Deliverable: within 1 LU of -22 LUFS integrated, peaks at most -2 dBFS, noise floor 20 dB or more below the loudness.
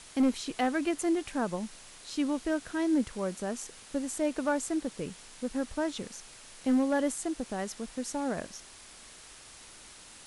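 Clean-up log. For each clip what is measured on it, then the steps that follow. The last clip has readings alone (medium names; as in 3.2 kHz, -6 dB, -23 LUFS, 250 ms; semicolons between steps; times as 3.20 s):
clipped samples 0.4%; clipping level -20.0 dBFS; noise floor -51 dBFS; noise floor target -52 dBFS; loudness -32.0 LUFS; peak level -20.0 dBFS; loudness target -22.0 LUFS
-> clip repair -20 dBFS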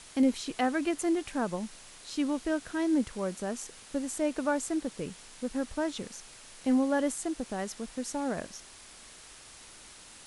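clipped samples 0.0%; noise floor -51 dBFS; noise floor target -52 dBFS
-> noise reduction 6 dB, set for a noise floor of -51 dBFS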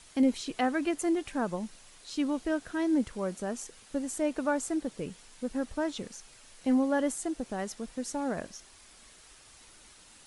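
noise floor -56 dBFS; loudness -32.0 LUFS; peak level -15.5 dBFS; loudness target -22.0 LUFS
-> trim +10 dB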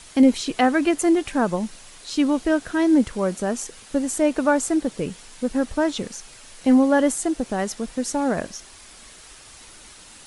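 loudness -22.0 LUFS; peak level -5.5 dBFS; noise floor -46 dBFS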